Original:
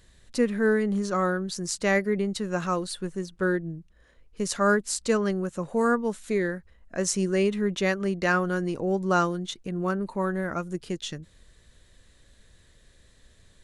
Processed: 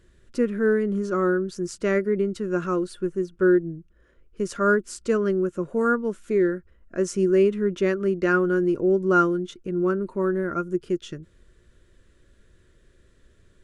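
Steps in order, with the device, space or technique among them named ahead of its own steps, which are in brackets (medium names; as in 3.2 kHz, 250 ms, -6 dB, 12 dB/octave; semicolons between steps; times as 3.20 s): graphic EQ with 31 bands 800 Hz -12 dB, 2 kHz -3 dB, 4 kHz -7 dB; inside a helmet (treble shelf 4 kHz -10 dB; small resonant body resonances 360/1400 Hz, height 10 dB)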